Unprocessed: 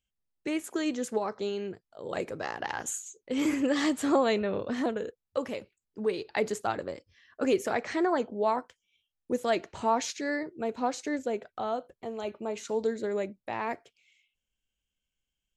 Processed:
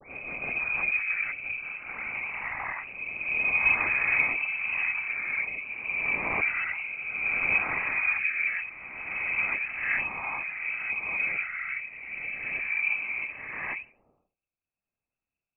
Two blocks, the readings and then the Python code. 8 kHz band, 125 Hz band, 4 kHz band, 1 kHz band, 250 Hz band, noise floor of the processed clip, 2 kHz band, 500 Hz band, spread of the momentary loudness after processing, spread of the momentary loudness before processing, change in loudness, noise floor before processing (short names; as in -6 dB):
under -40 dB, -3.0 dB, under -10 dB, -6.0 dB, -18.5 dB, under -85 dBFS, +14.0 dB, -17.5 dB, 11 LU, 10 LU, +3.5 dB, under -85 dBFS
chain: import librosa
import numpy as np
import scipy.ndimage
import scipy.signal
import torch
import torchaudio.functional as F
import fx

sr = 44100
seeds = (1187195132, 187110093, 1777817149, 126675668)

p1 = fx.spec_swells(x, sr, rise_s=2.22)
p2 = fx.peak_eq(p1, sr, hz=250.0, db=4.0, octaves=0.69)
p3 = fx.rotary_switch(p2, sr, hz=6.0, then_hz=0.8, switch_at_s=1.36)
p4 = fx.noise_vocoder(p3, sr, seeds[0], bands=16)
p5 = fx.dispersion(p4, sr, late='lows', ms=94.0, hz=440.0)
p6 = p5 + fx.echo_thinned(p5, sr, ms=82, feedback_pct=41, hz=870.0, wet_db=-23.0, dry=0)
p7 = fx.freq_invert(p6, sr, carrier_hz=2800)
y = p7 * librosa.db_to_amplitude(-2.0)